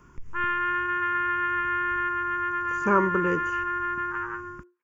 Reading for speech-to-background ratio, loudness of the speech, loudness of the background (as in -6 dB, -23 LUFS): 1.0 dB, -26.0 LUFS, -27.0 LUFS